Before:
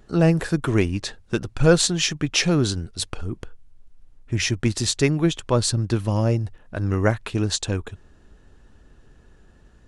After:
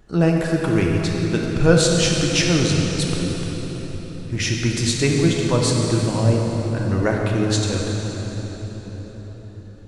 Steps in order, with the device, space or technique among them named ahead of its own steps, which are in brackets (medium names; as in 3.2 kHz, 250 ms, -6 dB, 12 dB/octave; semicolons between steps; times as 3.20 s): cathedral (reverberation RT60 5.0 s, pre-delay 4 ms, DRR -1 dB); trim -1 dB